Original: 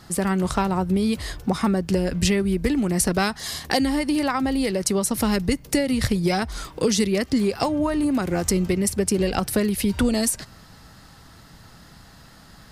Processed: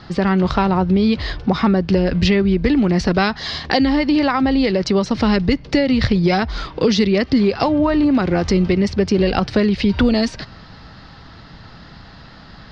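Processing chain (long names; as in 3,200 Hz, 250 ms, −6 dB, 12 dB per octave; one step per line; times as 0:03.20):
Butterworth low-pass 4,900 Hz 36 dB per octave
in parallel at −2 dB: brickwall limiter −18 dBFS, peak gain reduction 9 dB
on the sum: level +2.5 dB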